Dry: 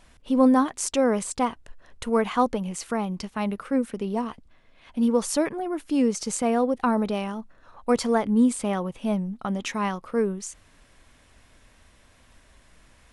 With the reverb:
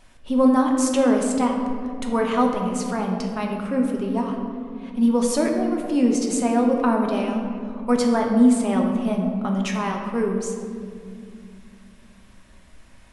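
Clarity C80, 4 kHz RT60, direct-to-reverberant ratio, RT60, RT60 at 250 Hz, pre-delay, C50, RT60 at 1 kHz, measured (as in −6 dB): 5.5 dB, 1.2 s, 1.0 dB, 2.3 s, 3.7 s, 3 ms, 4.0 dB, 2.0 s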